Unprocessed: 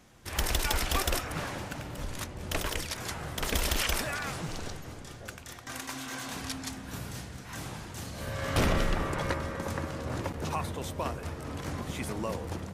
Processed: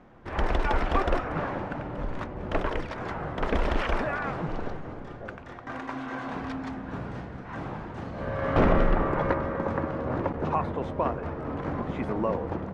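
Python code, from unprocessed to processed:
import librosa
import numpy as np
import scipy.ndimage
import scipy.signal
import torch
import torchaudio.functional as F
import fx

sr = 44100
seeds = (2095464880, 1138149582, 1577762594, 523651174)

y = scipy.signal.sosfilt(scipy.signal.butter(2, 1300.0, 'lowpass', fs=sr, output='sos'), x)
y = fx.peak_eq(y, sr, hz=84.0, db=-7.5, octaves=1.7)
y = y * librosa.db_to_amplitude(8.0)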